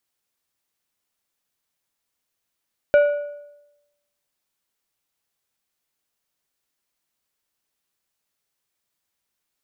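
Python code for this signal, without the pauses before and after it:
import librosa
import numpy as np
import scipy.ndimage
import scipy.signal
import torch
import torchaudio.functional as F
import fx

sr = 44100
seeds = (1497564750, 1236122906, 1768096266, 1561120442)

y = fx.strike_metal(sr, length_s=1.55, level_db=-9.0, body='plate', hz=583.0, decay_s=0.94, tilt_db=11.0, modes=5)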